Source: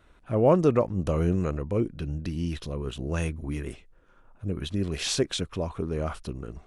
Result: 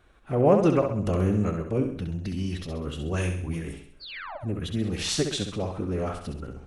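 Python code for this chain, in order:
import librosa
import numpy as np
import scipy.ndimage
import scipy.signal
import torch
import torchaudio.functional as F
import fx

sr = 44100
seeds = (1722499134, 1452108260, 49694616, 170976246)

y = fx.spec_paint(x, sr, seeds[0], shape='fall', start_s=4.01, length_s=0.36, low_hz=530.0, high_hz=4800.0, level_db=-32.0)
y = fx.pitch_keep_formants(y, sr, semitones=2.0)
y = fx.room_flutter(y, sr, wall_m=11.3, rt60_s=0.59)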